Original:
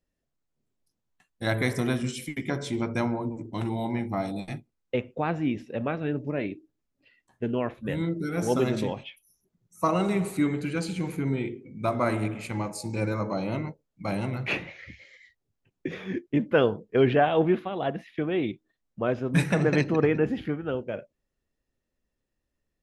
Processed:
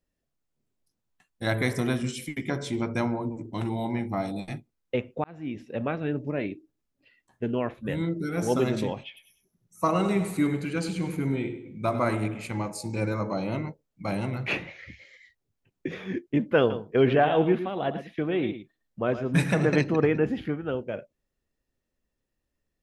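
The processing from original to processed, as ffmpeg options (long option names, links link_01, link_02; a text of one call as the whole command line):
ffmpeg -i in.wav -filter_complex "[0:a]asettb=1/sr,asplit=3[link_01][link_02][link_03];[link_01]atrim=end=9.044[link_04];[link_02]atrim=start=9.04:end=12.15,asetpts=PTS-STARTPTS,afade=type=in:duration=0.004:curve=qsin,afade=type=out:start_time=3.106:duration=0.004:curve=qsin,aecho=1:1:99|198|297:0.266|0.0851|0.0272,atrim=end_sample=137151[link_05];[link_03]atrim=start=12.146[link_06];[link_04][link_05]acrossfade=duration=0.004:curve1=hsin:curve2=qsin[link_07];[link_07][link_06]acrossfade=duration=0.004:curve1=qsin:curve2=hsin,asettb=1/sr,asplit=3[link_08][link_09][link_10];[link_08]atrim=end=16.594[link_11];[link_09]atrim=start=16.59:end=19.79,asetpts=PTS-STARTPTS,afade=type=in:duration=0.004:curve=qsin,afade=type=out:start_time=3.196:duration=0.004:curve=qsin,aecho=1:1:110:0.282,atrim=end_sample=141120[link_12];[link_10]atrim=start=19.786[link_13];[link_11][link_12]acrossfade=duration=0.004:curve1=hsin:curve2=qsin[link_14];[link_14][link_13]acrossfade=duration=0.004:curve1=qsin:curve2=hsin,asplit=2[link_15][link_16];[link_15]atrim=end=5.24,asetpts=PTS-STARTPTS,afade=type=out:start_time=5.236:duration=0.004:curve=hsin[link_17];[link_16]atrim=start=5.24,asetpts=PTS-STARTPTS,afade=type=in:duration=0.53[link_18];[link_17][link_18]concat=n=2:v=0:a=1" out.wav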